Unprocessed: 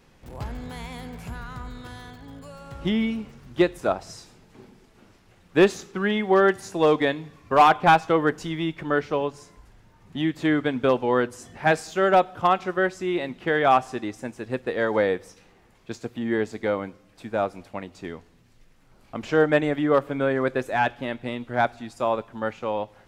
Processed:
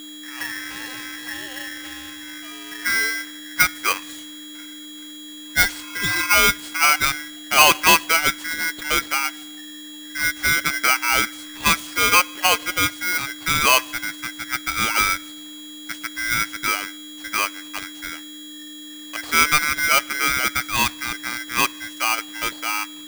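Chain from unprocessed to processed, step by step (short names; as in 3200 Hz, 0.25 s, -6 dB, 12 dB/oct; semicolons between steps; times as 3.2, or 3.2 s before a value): spectral repair 5.3–6.24, 380–1300 Hz both; whine 1500 Hz -37 dBFS; polarity switched at an audio rate 1800 Hz; gain +2 dB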